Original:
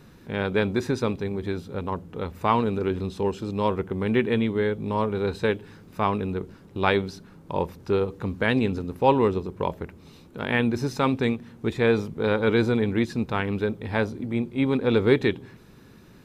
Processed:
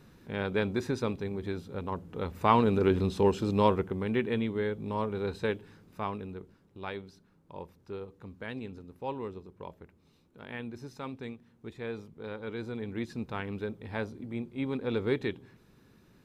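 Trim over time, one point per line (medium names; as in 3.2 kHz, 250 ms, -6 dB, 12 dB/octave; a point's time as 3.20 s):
1.86 s -6 dB
2.87 s +1 dB
3.60 s +1 dB
4.08 s -7 dB
5.59 s -7 dB
6.85 s -17 dB
12.57 s -17 dB
13.13 s -10 dB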